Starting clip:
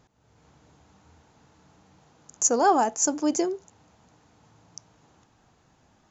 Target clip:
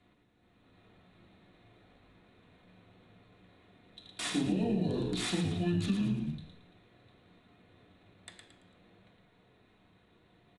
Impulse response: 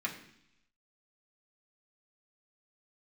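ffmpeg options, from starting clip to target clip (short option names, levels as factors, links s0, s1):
-filter_complex "[0:a]acrossover=split=3900[s0][s1];[s1]aeval=exprs='(mod(22.4*val(0)+1,2)-1)/22.4':c=same[s2];[s0][s2]amix=inputs=2:normalize=0,flanger=delay=7:depth=9.2:regen=90:speed=1.4:shape=triangular,asetrate=25442,aresample=44100,acrossover=split=290|3000[s3][s4][s5];[s4]acompressor=threshold=0.02:ratio=6[s6];[s3][s6][s5]amix=inputs=3:normalize=0,asplit=5[s7][s8][s9][s10][s11];[s8]adelay=112,afreqshift=-73,volume=0.562[s12];[s9]adelay=224,afreqshift=-146,volume=0.202[s13];[s10]adelay=336,afreqshift=-219,volume=0.0733[s14];[s11]adelay=448,afreqshift=-292,volume=0.0263[s15];[s7][s12][s13][s14][s15]amix=inputs=5:normalize=0[s16];[1:a]atrim=start_sample=2205,afade=t=out:st=0.24:d=0.01,atrim=end_sample=11025[s17];[s16][s17]afir=irnorm=-1:irlink=0,acompressor=threshold=0.0447:ratio=6" -ar 22050 -c:a adpcm_ima_wav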